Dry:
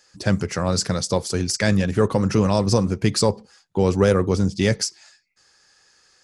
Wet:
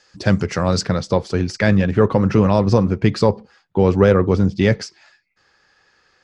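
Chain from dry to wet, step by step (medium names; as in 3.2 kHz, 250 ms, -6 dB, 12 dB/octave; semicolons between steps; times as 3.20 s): low-pass 5 kHz 12 dB/octave, from 0.81 s 2.9 kHz; trim +4 dB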